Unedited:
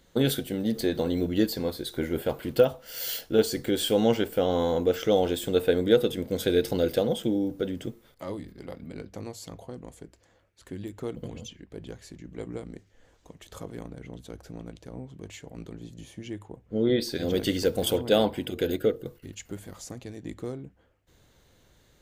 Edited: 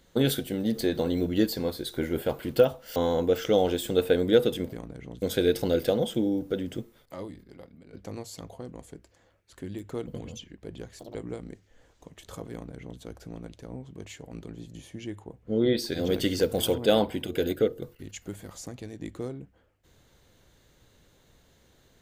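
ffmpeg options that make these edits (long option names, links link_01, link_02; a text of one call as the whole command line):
ffmpeg -i in.wav -filter_complex "[0:a]asplit=7[link_01][link_02][link_03][link_04][link_05][link_06][link_07];[link_01]atrim=end=2.962[link_08];[link_02]atrim=start=4.538:end=6.312[link_09];[link_03]atrim=start=13.748:end=14.242[link_10];[link_04]atrim=start=6.308:end=9.02,asetpts=PTS-STARTPTS,afade=type=out:start_time=1.572:duration=1.14:silence=0.177828[link_11];[link_05]atrim=start=9.02:end=12.084,asetpts=PTS-STARTPTS,afade=type=in:duration=0.004:curve=hsin:silence=0.177828[link_12];[link_06]atrim=start=12.08:end=12.38,asetpts=PTS-STARTPTS,asetrate=85113,aresample=44100[link_13];[link_07]atrim=start=12.376[link_14];[link_08][link_09]acrossfade=duration=0.004:curve1=hsin:curve2=hsin[link_15];[link_15][link_10]acrossfade=duration=0.004:curve1=hsin:curve2=hsin[link_16];[link_11][link_12]concat=n=2:v=0:a=1[link_17];[link_16][link_17]acrossfade=duration=0.004:curve1=hsin:curve2=hsin[link_18];[link_18][link_13]acrossfade=duration=0.004:curve1=hsin:curve2=hsin[link_19];[link_19][link_14]acrossfade=duration=0.004:curve1=hsin:curve2=hsin" out.wav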